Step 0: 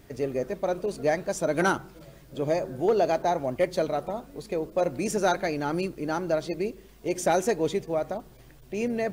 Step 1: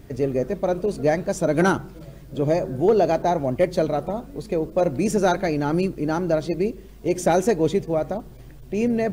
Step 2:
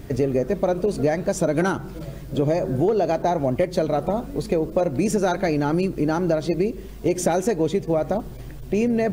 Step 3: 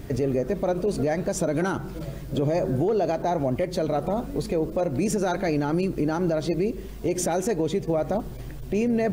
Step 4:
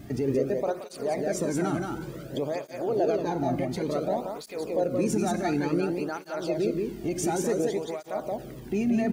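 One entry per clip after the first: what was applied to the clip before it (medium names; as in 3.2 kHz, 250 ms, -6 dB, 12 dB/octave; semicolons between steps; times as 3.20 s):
bass shelf 390 Hz +9 dB; trim +1.5 dB
compression, threshold -24 dBFS, peak gain reduction 11 dB; trim +6.5 dB
peak limiter -16 dBFS, peak gain reduction 7.5 dB
delay 177 ms -3.5 dB; Schroeder reverb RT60 1.9 s, combs from 26 ms, DRR 13.5 dB; cancelling through-zero flanger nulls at 0.56 Hz, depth 2.2 ms; trim -1.5 dB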